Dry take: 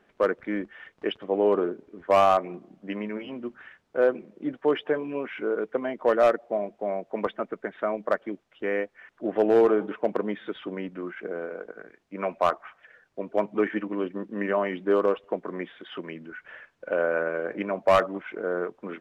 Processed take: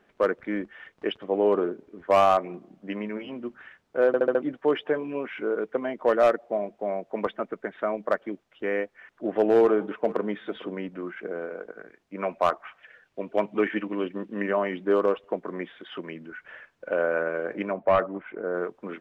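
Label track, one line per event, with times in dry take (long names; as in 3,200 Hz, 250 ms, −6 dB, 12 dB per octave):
4.070000	4.070000	stutter in place 0.07 s, 5 plays
9.580000	10.260000	delay throw 450 ms, feedback 10%, level −17.5 dB
12.630000	14.420000	parametric band 2,800 Hz +6 dB 0.9 octaves
17.730000	18.540000	high-frequency loss of the air 440 metres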